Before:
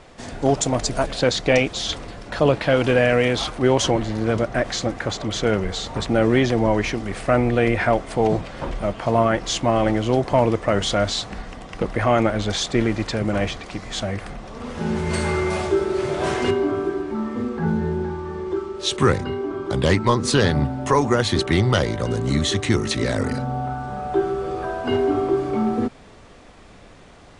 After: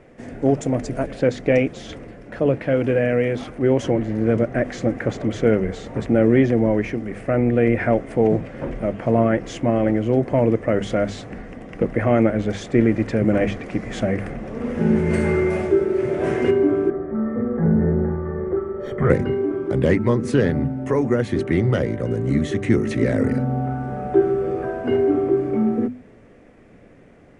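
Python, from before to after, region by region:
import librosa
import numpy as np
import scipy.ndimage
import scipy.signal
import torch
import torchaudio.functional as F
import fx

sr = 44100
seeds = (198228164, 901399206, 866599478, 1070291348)

y = fx.chain(x, sr, fx.comb(ms=1.6, depth=0.6),
    fx.tube_stage(drive_db=18.0, bias=0.4),
    fx.savgol(points=41), at=(16.9, 19.1))
y = fx.graphic_eq(y, sr, hz=(125, 250, 500, 1000, 2000, 4000, 8000), db=(6, 8, 7, -6, 7, -12, -5))
y = fx.rider(y, sr, range_db=10, speed_s=2.0)
y = fx.hum_notches(y, sr, base_hz=50, count=5)
y = F.gain(torch.from_numpy(y), -6.0).numpy()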